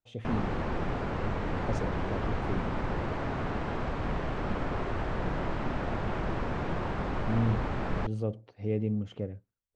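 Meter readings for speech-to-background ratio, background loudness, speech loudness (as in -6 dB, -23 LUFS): -1.5 dB, -34.0 LUFS, -35.5 LUFS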